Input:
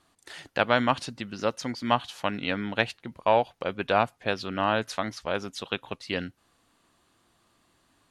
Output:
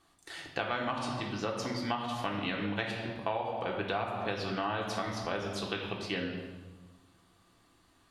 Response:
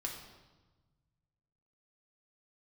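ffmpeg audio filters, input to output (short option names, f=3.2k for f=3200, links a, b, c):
-filter_complex "[1:a]atrim=start_sample=2205[a];[0:a][a]afir=irnorm=-1:irlink=0,acompressor=threshold=-30dB:ratio=6"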